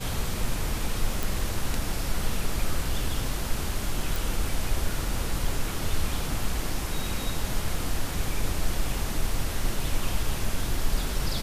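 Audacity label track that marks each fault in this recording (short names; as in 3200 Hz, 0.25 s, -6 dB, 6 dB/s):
1.230000	1.230000	pop
4.160000	4.160000	pop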